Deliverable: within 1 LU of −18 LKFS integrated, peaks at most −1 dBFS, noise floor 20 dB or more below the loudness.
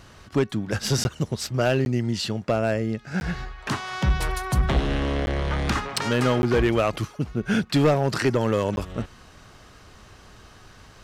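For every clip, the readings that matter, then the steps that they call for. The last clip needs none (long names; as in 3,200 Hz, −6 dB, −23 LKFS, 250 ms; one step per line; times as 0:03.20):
share of clipped samples 0.7%; peaks flattened at −13.5 dBFS; number of dropouts 6; longest dropout 11 ms; integrated loudness −24.5 LKFS; sample peak −13.5 dBFS; target loudness −18.0 LKFS
→ clipped peaks rebuilt −13.5 dBFS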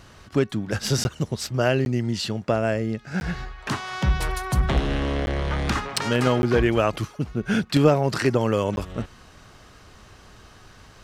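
share of clipped samples 0.0%; number of dropouts 6; longest dropout 11 ms
→ repair the gap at 0:01.04/0:01.85/0:03.20/0:05.26/0:06.42/0:08.76, 11 ms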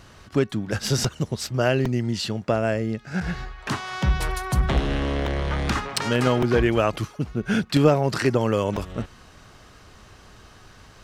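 number of dropouts 0; integrated loudness −24.0 LKFS; sample peak −4.5 dBFS; target loudness −18.0 LKFS
→ level +6 dB
brickwall limiter −1 dBFS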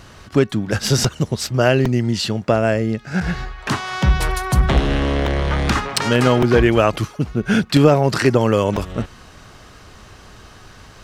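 integrated loudness −18.0 LKFS; sample peak −1.0 dBFS; background noise floor −43 dBFS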